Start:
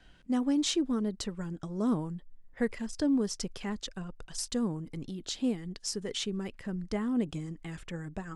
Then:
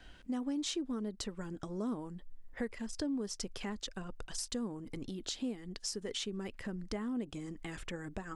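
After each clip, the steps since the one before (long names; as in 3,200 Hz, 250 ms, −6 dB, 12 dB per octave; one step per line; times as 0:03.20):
parametric band 160 Hz −9 dB 0.37 octaves
downward compressor 2.5 to 1, threshold −43 dBFS, peak gain reduction 12.5 dB
level +3.5 dB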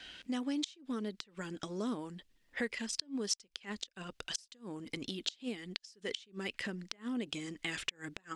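meter weighting curve D
gate with flip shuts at −22 dBFS, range −28 dB
level +1.5 dB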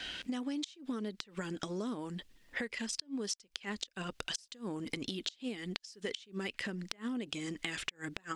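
downward compressor, threshold −44 dBFS, peak gain reduction 14 dB
level +8.5 dB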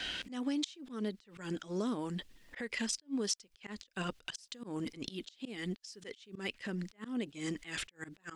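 volume swells 139 ms
level +3 dB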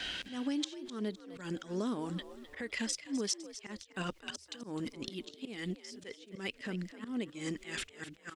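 echo with shifted repeats 256 ms, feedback 36%, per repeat +64 Hz, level −13.5 dB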